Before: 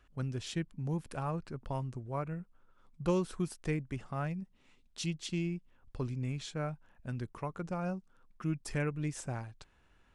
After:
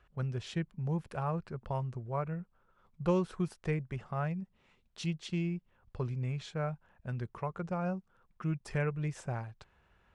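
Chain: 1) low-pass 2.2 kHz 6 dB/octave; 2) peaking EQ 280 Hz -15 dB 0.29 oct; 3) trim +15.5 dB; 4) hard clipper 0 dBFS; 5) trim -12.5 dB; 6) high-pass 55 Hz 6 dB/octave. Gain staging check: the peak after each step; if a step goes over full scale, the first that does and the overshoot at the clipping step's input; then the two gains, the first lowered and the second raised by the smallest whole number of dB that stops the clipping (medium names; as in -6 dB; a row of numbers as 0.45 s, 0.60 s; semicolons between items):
-19.5 dBFS, -20.0 dBFS, -4.5 dBFS, -4.5 dBFS, -17.0 dBFS, -17.5 dBFS; nothing clips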